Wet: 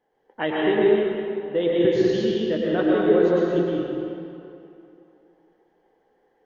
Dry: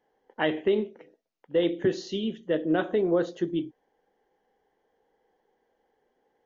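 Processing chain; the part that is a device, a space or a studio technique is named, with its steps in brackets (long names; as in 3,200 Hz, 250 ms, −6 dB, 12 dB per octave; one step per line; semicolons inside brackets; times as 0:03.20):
swimming-pool hall (convolution reverb RT60 2.8 s, pre-delay 104 ms, DRR −5 dB; high-shelf EQ 5,300 Hz −6.5 dB)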